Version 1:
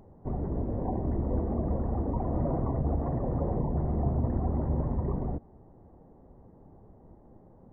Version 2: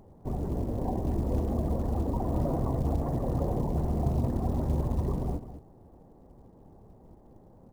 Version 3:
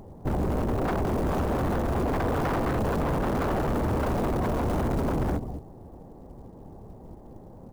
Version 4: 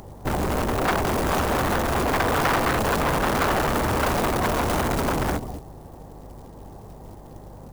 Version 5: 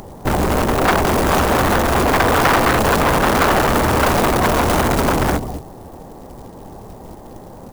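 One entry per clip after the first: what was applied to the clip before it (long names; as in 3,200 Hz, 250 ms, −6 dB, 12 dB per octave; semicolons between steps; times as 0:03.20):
on a send: single-tap delay 209 ms −11.5 dB; on the sum: floating-point word with a short mantissa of 4 bits
wave folding −29.5 dBFS; level +8.5 dB
tilt shelving filter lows −7.5 dB, about 930 Hz; hum with harmonics 50 Hz, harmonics 3, −53 dBFS; level +7.5 dB
mains-hum notches 50/100/150 Hz; level +7.5 dB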